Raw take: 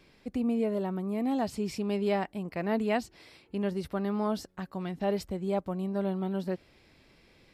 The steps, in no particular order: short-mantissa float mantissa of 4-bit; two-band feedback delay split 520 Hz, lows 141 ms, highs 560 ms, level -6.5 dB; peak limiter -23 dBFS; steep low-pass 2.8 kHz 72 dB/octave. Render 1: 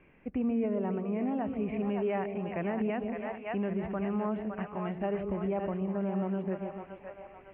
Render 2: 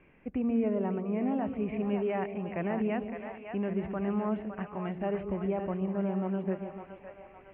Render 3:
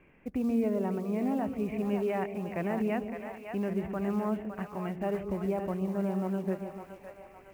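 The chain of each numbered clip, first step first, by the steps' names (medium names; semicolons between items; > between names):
short-mantissa float > two-band feedback delay > peak limiter > steep low-pass; peak limiter > two-band feedback delay > short-mantissa float > steep low-pass; steep low-pass > peak limiter > short-mantissa float > two-band feedback delay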